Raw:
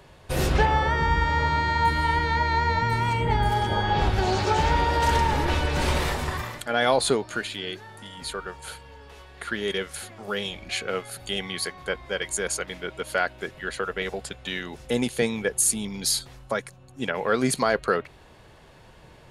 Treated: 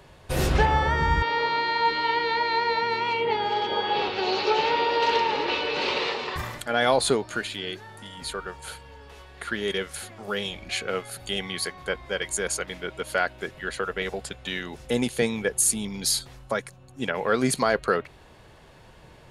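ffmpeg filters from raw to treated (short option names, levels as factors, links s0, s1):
-filter_complex "[0:a]asettb=1/sr,asplit=3[s0][s1][s2];[s0]atrim=end=1.224[s3];[s1]atrim=start=1.22:end=6.36,asetpts=PTS-STARTPTS,afade=t=in:d=0.004:c=qsin,afade=t=out:st=5.136:d=0.004:c=qsin,highpass=380,equalizer=f=450:t=q:w=4:g=8,equalizer=f=660:t=q:w=4:g=-6,equalizer=f=1600:t=q:w=4:g=-5,equalizer=f=2700:t=q:w=4:g=7,equalizer=f=4200:t=q:w=4:g=6,lowpass=f=5000:w=0.5412,lowpass=f=5000:w=1.3066[s4];[s2]atrim=start=6.356[s5];[s3][s4]acrossfade=d=0.004:c1=hsin:c2=qsin[s6];[s6][s5]acrossfade=d=0.004:c1=qsin:c2=hsin"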